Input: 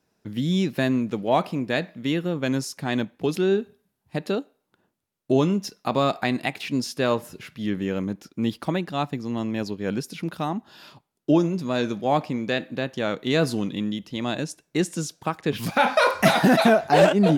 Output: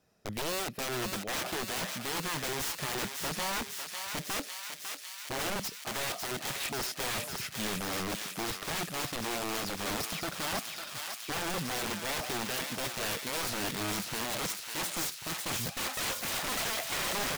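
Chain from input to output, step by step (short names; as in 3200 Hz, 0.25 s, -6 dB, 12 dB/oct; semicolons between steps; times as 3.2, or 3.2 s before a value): comb 1.6 ms, depth 36%; reverse; compressor 10:1, threshold -28 dBFS, peak gain reduction 18 dB; reverse; wrapped overs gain 29.5 dB; thinning echo 0.55 s, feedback 80%, high-pass 1200 Hz, level -4 dB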